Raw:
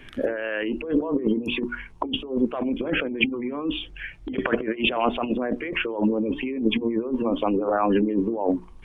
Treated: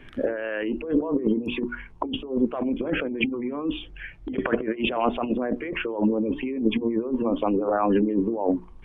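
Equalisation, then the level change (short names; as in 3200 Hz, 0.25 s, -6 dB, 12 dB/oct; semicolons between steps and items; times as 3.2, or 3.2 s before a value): high shelf 2800 Hz -10 dB; 0.0 dB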